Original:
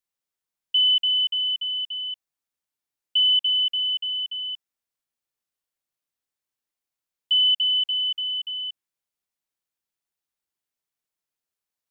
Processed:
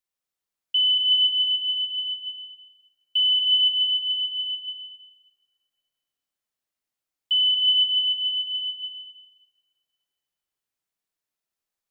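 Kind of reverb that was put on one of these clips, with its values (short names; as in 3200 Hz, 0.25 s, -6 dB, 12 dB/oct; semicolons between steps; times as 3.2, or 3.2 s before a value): digital reverb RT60 1.8 s, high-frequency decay 0.75×, pre-delay 75 ms, DRR 1 dB; gain -1.5 dB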